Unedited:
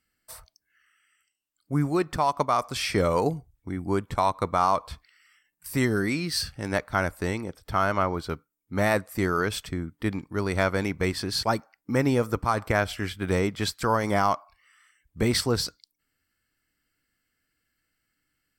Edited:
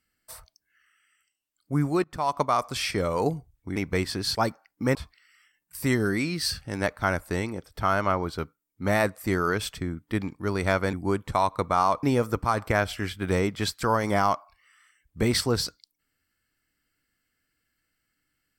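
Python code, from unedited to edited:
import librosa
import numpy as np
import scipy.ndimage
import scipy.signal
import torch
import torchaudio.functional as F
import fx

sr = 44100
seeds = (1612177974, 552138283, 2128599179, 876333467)

y = fx.edit(x, sr, fx.fade_in_from(start_s=2.04, length_s=0.3, floor_db=-20.5),
    fx.clip_gain(start_s=2.91, length_s=0.29, db=-3.5),
    fx.swap(start_s=3.76, length_s=1.1, other_s=10.84, other_length_s=1.19), tone=tone)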